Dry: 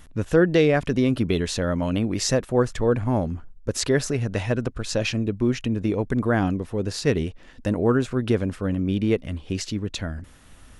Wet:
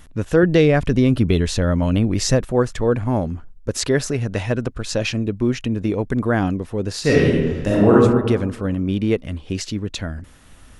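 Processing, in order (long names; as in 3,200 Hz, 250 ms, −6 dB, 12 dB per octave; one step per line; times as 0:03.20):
0:00.43–0:02.52: low-shelf EQ 120 Hz +11 dB
0:07.00–0:07.93: thrown reverb, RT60 1.4 s, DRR −6 dB
level +2.5 dB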